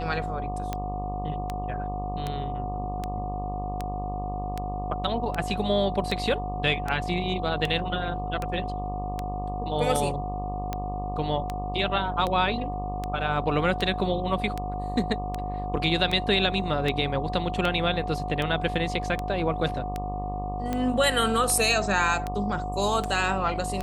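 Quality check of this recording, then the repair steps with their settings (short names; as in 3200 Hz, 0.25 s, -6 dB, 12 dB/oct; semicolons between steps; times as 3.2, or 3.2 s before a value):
buzz 50 Hz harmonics 24 -33 dBFS
tick 78 rpm -15 dBFS
tone 730 Hz -32 dBFS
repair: de-click; de-hum 50 Hz, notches 24; notch 730 Hz, Q 30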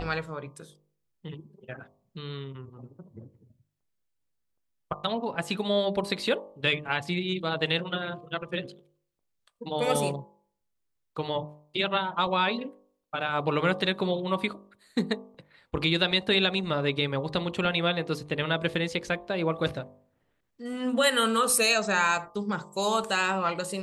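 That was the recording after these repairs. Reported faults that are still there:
none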